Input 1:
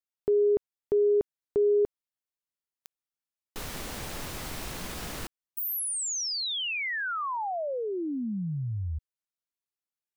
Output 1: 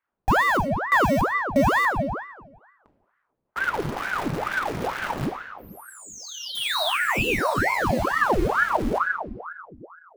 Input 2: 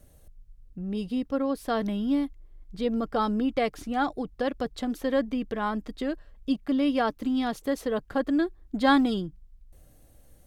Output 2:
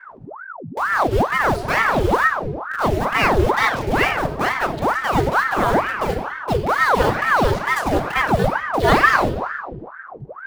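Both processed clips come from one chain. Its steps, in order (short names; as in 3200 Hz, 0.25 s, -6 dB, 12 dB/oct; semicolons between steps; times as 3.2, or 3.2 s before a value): low-pass opened by the level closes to 590 Hz, open at -22.5 dBFS; power-law curve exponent 0.7; in parallel at -3 dB: bit-crush 5-bit; on the sum: shoebox room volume 900 m³, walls mixed, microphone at 1.3 m; ring modulator with a swept carrier 860 Hz, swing 85%, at 2.2 Hz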